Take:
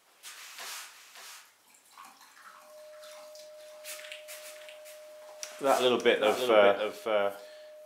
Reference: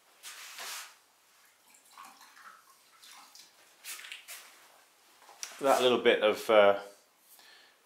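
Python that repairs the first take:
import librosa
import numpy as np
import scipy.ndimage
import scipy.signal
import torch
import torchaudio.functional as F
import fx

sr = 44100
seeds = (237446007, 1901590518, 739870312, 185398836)

y = fx.notch(x, sr, hz=610.0, q=30.0)
y = fx.fix_echo_inverse(y, sr, delay_ms=569, level_db=-6.5)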